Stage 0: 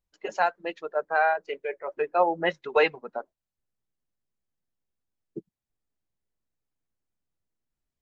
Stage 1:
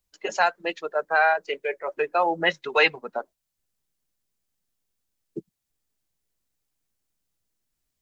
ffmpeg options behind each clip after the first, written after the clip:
ffmpeg -i in.wav -filter_complex "[0:a]highshelf=frequency=2800:gain=10,acrossover=split=120|940[link_01][link_02][link_03];[link_02]alimiter=limit=-20.5dB:level=0:latency=1[link_04];[link_01][link_04][link_03]amix=inputs=3:normalize=0,volume=3dB" out.wav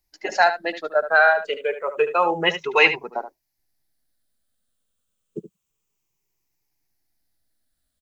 ffmpeg -i in.wav -af "afftfilt=real='re*pow(10,9/40*sin(2*PI*(0.75*log(max(b,1)*sr/1024/100)/log(2)-(-0.29)*(pts-256)/sr)))':imag='im*pow(10,9/40*sin(2*PI*(0.75*log(max(b,1)*sr/1024/100)/log(2)-(-0.29)*(pts-256)/sr)))':win_size=1024:overlap=0.75,aecho=1:1:74:0.266,volume=2dB" out.wav

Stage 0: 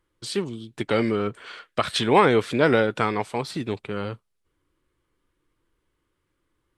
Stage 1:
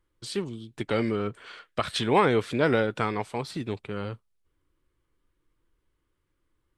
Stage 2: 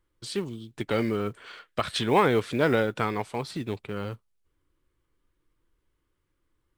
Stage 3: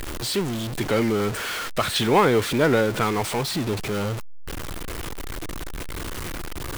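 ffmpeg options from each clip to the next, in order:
ffmpeg -i in.wav -af "lowshelf=frequency=84:gain=8,volume=-4.5dB" out.wav
ffmpeg -i in.wav -af "acrusher=bits=8:mode=log:mix=0:aa=0.000001" out.wav
ffmpeg -i in.wav -af "aeval=exprs='val(0)+0.5*0.0473*sgn(val(0))':channel_layout=same,volume=2dB" out.wav

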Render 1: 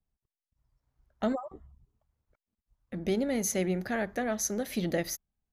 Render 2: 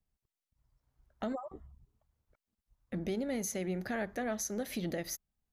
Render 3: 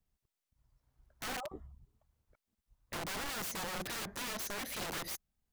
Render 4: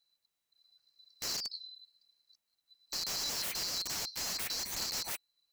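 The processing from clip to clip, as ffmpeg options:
ffmpeg -i in.wav -af "alimiter=level_in=3dB:limit=-24dB:level=0:latency=1:release=302,volume=-3dB" out.wav
ffmpeg -i in.wav -af "aeval=exprs='(mod(63.1*val(0)+1,2)-1)/63.1':channel_layout=same,volume=1.5dB" out.wav
ffmpeg -i in.wav -af "afftfilt=real='real(if(lt(b,736),b+184*(1-2*mod(floor(b/184),2)),b),0)':imag='imag(if(lt(b,736),b+184*(1-2*mod(floor(b/184),2)),b),0)':win_size=2048:overlap=0.75,volume=3dB" out.wav

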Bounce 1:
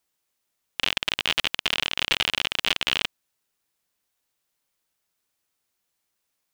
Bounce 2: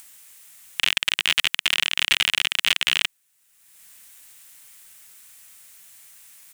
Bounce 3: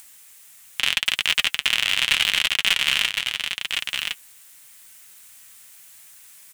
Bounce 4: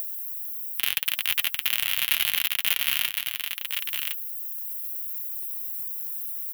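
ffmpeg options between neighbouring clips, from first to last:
ffmpeg -i in.wav -filter_complex "[0:a]firequalizer=gain_entry='entry(170,0);entry(340,-7);entry(620,-3);entry(1900,8);entry(4700,4);entry(8200,13);entry(15000,10)':delay=0.05:min_phase=1,asplit=2[link_01][link_02];[link_02]acompressor=mode=upward:threshold=-24dB:ratio=2.5,volume=1dB[link_03];[link_01][link_03]amix=inputs=2:normalize=0,alimiter=level_in=-4dB:limit=-1dB:release=50:level=0:latency=1,volume=-2dB" out.wav
ffmpeg -i in.wav -af "aecho=1:1:1061:0.531,flanger=delay=2.5:depth=7.5:regen=-51:speed=0.8:shape=triangular,volume=4.5dB" out.wav
ffmpeg -i in.wav -af "aexciter=amount=13.9:drive=5.5:freq=11000,volume=-7.5dB" out.wav

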